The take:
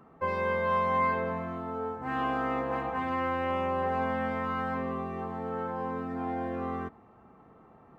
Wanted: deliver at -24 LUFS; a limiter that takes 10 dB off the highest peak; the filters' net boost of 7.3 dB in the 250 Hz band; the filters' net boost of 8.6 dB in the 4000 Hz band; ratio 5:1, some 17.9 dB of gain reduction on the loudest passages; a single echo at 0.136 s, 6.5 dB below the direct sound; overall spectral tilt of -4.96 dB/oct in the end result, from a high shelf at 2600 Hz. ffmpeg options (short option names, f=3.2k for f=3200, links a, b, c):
-af "equalizer=f=250:t=o:g=8,highshelf=f=2.6k:g=8,equalizer=f=4k:t=o:g=6,acompressor=threshold=-43dB:ratio=5,alimiter=level_in=16.5dB:limit=-24dB:level=0:latency=1,volume=-16.5dB,aecho=1:1:136:0.473,volume=24.5dB"